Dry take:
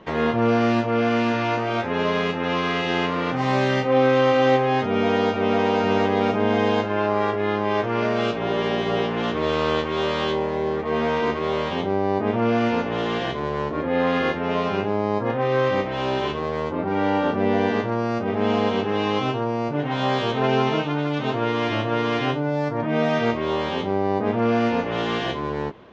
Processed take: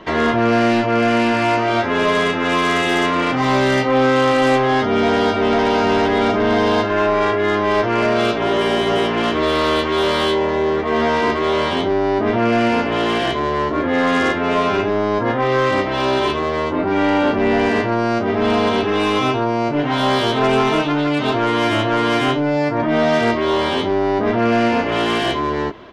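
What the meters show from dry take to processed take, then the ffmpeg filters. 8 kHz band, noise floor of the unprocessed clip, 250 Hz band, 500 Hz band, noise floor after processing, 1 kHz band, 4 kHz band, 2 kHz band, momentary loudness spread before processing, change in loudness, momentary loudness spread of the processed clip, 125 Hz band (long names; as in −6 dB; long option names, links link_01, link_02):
can't be measured, −27 dBFS, +5.0 dB, +4.5 dB, −21 dBFS, +6.0 dB, +7.5 dB, +7.0 dB, 5 LU, +5.5 dB, 3 LU, +2.0 dB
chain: -filter_complex "[0:a]bandreject=frequency=2500:width=22,aecho=1:1:3:0.37,acrossover=split=1200[link_01][link_02];[link_01]acontrast=37[link_03];[link_02]aeval=exprs='0.188*(cos(1*acos(clip(val(0)/0.188,-1,1)))-cos(1*PI/2))+0.0668*(cos(5*acos(clip(val(0)/0.188,-1,1)))-cos(5*PI/2))':channel_layout=same[link_04];[link_03][link_04]amix=inputs=2:normalize=0,asoftclip=type=tanh:threshold=-9.5dB,volume=1dB"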